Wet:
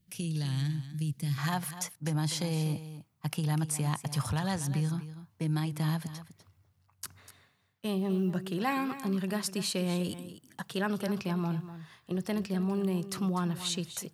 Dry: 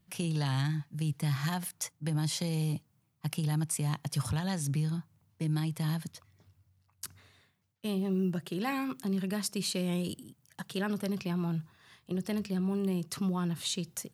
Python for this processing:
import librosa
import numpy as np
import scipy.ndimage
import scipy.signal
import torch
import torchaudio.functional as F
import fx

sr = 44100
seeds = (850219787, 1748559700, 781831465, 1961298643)

y = fx.peak_eq(x, sr, hz=950.0, db=fx.steps((0.0, -13.0), (1.38, 4.5)), octaves=2.0)
y = y + 10.0 ** (-13.0 / 20.0) * np.pad(y, (int(247 * sr / 1000.0), 0))[:len(y)]